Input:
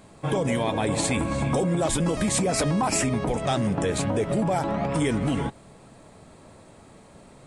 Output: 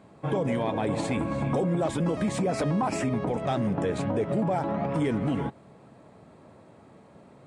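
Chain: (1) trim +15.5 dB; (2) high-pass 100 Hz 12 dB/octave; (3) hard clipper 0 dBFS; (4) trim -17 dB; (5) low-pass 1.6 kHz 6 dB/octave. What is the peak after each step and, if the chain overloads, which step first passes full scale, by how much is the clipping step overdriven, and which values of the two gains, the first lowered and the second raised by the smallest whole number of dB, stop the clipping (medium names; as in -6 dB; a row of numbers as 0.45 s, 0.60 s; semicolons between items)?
+3.0 dBFS, +3.0 dBFS, 0.0 dBFS, -17.0 dBFS, -17.0 dBFS; step 1, 3.0 dB; step 1 +12.5 dB, step 4 -14 dB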